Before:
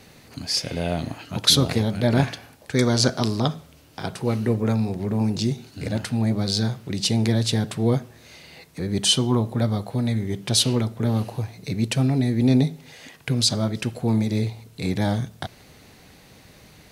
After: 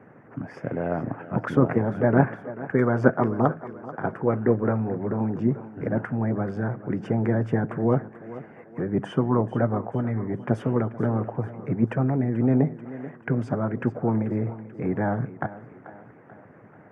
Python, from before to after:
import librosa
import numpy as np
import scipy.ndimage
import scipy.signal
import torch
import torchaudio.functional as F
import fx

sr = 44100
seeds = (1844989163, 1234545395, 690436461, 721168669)

y = scipy.signal.sosfilt(scipy.signal.ellip(3, 1.0, 40, [110.0, 1600.0], 'bandpass', fs=sr, output='sos'), x)
y = fx.echo_thinned(y, sr, ms=437, feedback_pct=53, hz=220.0, wet_db=-14.0)
y = fx.hpss(y, sr, part='harmonic', gain_db=-9)
y = y * 10.0 ** (5.5 / 20.0)